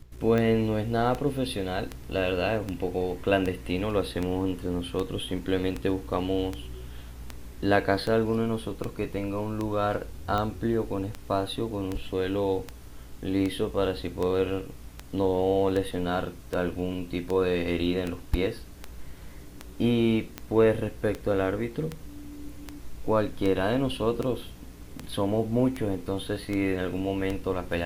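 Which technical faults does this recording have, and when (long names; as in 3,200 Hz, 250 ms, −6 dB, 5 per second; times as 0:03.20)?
scratch tick 78 rpm −17 dBFS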